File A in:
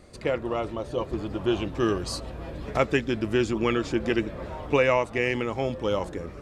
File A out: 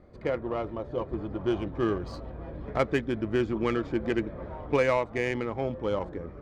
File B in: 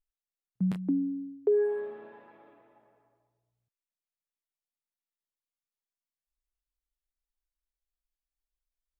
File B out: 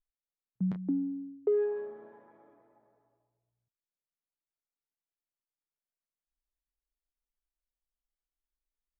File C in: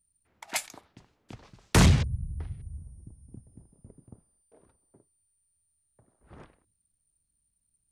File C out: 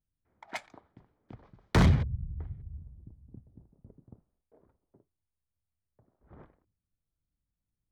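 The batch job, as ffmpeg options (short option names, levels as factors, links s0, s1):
-af "bandreject=f=2700:w=8.5,adynamicsmooth=sensitivity=1.5:basefreq=1800,volume=0.75"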